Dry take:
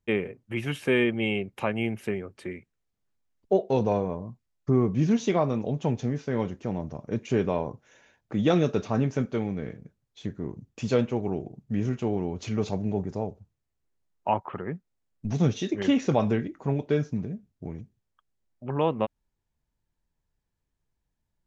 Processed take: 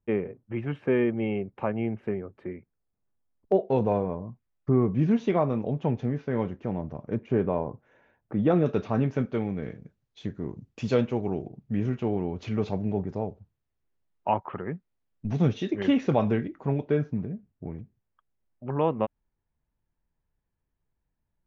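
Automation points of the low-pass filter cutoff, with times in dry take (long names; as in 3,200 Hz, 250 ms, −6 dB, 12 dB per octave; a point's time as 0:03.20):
1,300 Hz
from 0:03.52 2,400 Hz
from 0:07.15 1,500 Hz
from 0:08.66 3,200 Hz
from 0:09.63 5,000 Hz
from 0:11.48 3,300 Hz
from 0:16.89 2,200 Hz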